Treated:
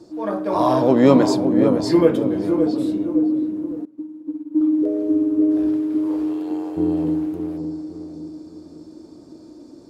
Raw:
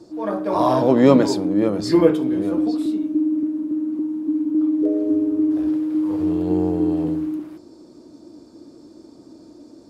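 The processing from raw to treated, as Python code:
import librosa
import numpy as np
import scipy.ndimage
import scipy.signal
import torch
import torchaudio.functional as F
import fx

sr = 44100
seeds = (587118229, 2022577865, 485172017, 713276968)

y = fx.highpass(x, sr, hz=fx.line((6.06, 450.0), (6.76, 1000.0)), slope=12, at=(6.06, 6.76), fade=0.02)
y = fx.echo_filtered(y, sr, ms=562, feedback_pct=45, hz=820.0, wet_db=-6.0)
y = fx.upward_expand(y, sr, threshold_db=-28.0, expansion=2.5, at=(3.85, 4.61))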